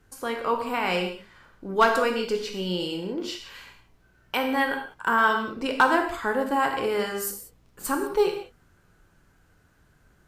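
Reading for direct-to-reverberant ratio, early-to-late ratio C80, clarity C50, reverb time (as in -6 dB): 3.0 dB, 9.0 dB, 7.0 dB, not exponential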